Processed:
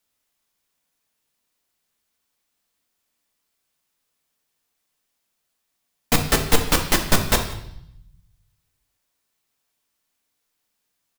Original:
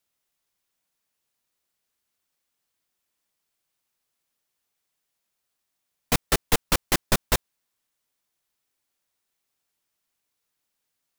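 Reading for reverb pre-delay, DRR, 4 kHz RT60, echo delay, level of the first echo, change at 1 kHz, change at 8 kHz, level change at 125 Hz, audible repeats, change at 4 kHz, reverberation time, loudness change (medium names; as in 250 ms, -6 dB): 3 ms, 4.0 dB, 0.80 s, 177 ms, -21.0 dB, +4.5 dB, +4.0 dB, +5.0 dB, 1, +4.5 dB, 0.75 s, +4.5 dB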